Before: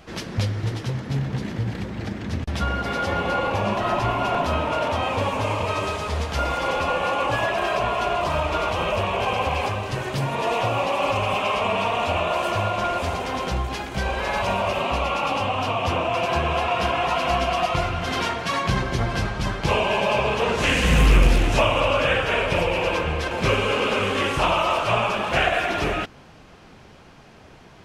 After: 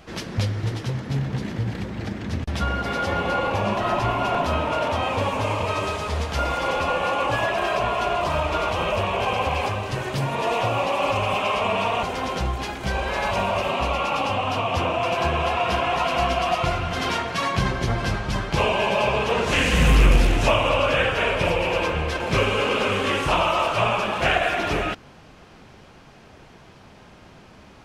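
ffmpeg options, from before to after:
-filter_complex "[0:a]asplit=2[a][b];[a]atrim=end=12.032[c];[b]atrim=start=13.138[d];[c][d]acrossfade=d=0.004:c1=hsin:c2=hsin"

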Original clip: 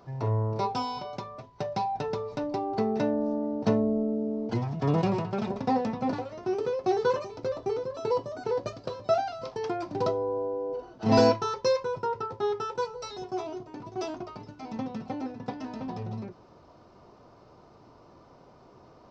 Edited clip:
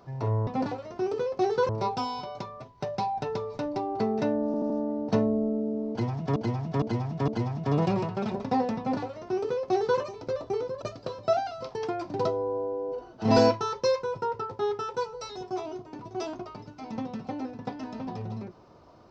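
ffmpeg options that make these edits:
-filter_complex "[0:a]asplit=10[a][b][c][d][e][f][g][h][i][j];[a]atrim=end=0.472[k];[b]atrim=start=5.938:end=7.162[l];[c]atrim=start=0.468:end=3.322[m];[d]atrim=start=3.238:end=3.322[n];[e]atrim=start=3.238:end=3.322[o];[f]atrim=start=3.238:end=4.902[p];[g]atrim=start=4.438:end=4.902[q];[h]atrim=start=4.438:end=4.902[r];[i]atrim=start=4.438:end=7.982[s];[j]atrim=start=8.628[t];[k][l]acrossfade=d=0.004:c1=hsin:c2=hsin[u];[u][m]acrossfade=d=0.004:c1=hsin:c2=hsin[v];[v][n]acrossfade=d=0.004:c1=hsin:c2=hsin[w];[w][o]acrossfade=d=0.004:c1=hsin:c2=hsin[x];[x][p]acrossfade=d=0.004:c1=hsin:c2=hsin[y];[y][q]acrossfade=d=0.004:c1=hsin:c2=hsin[z];[z][r]acrossfade=d=0.004:c1=hsin:c2=hsin[aa];[aa][s]acrossfade=d=0.004:c1=hsin:c2=hsin[ab];[ab][t]acrossfade=d=0.004:c1=hsin:c2=hsin"

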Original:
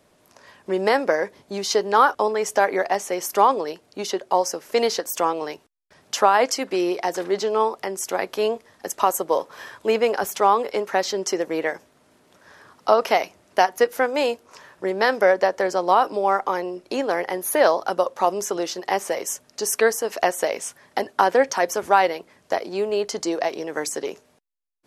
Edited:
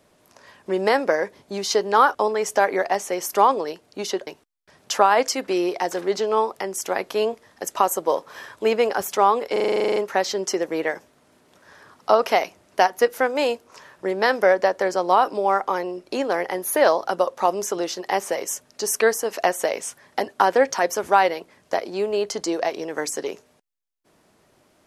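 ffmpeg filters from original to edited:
-filter_complex "[0:a]asplit=13[a][b][c][d][e][f][g][h][i][j][k][l][m];[a]atrim=end=4.272[n];[b]atrim=start=5.498:end=10.792[o];[c]atrim=start=10.748:end=10.792[p];[d]atrim=start=10.748:end=10.792[q];[e]atrim=start=10.748:end=10.792[r];[f]atrim=start=10.748:end=10.792[s];[g]atrim=start=10.748:end=10.792[t];[h]atrim=start=10.748:end=10.792[u];[i]atrim=start=10.748:end=10.792[v];[j]atrim=start=10.748:end=10.792[w];[k]atrim=start=10.748:end=10.792[x];[l]atrim=start=10.748:end=10.792[y];[m]atrim=start=10.748[z];[n][o]acrossfade=d=0.004:c1=hsin:c2=hsin[aa];[aa][p]acrossfade=d=0.004:c1=hsin:c2=hsin[ab];[ab][q]acrossfade=d=0.004:c1=hsin:c2=hsin[ac];[ac][r]acrossfade=d=0.004:c1=hsin:c2=hsin[ad];[ad][s]acrossfade=d=0.004:c1=hsin:c2=hsin[ae];[ae][t]acrossfade=d=0.004:c1=hsin:c2=hsin[af];[af][u]acrossfade=d=0.004:c1=hsin:c2=hsin[ag];[ag][v]acrossfade=d=0.004:c1=hsin:c2=hsin[ah];[ah][w]acrossfade=d=0.004:c1=hsin:c2=hsin[ai];[ai][x]acrossfade=d=0.004:c1=hsin:c2=hsin[aj];[aj][y]acrossfade=d=0.004:c1=hsin:c2=hsin[ak];[ak][z]acrossfade=d=0.004:c1=hsin:c2=hsin"

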